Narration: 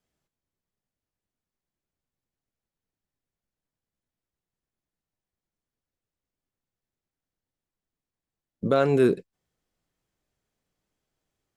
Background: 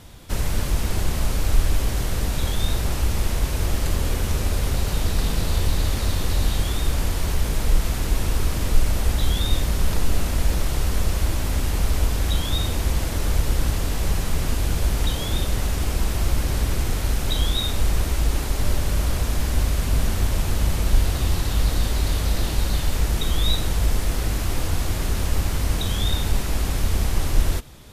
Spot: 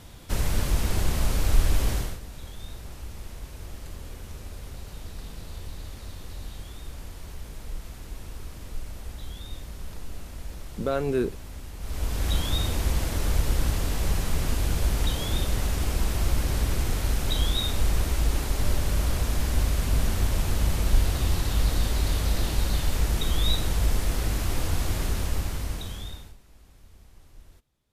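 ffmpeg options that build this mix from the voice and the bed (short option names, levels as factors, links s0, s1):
-filter_complex "[0:a]adelay=2150,volume=0.531[s0];[1:a]volume=3.98,afade=t=out:st=1.92:d=0.27:silence=0.177828,afade=t=in:st=11.79:d=0.54:silence=0.199526,afade=t=out:st=24.99:d=1.37:silence=0.0398107[s1];[s0][s1]amix=inputs=2:normalize=0"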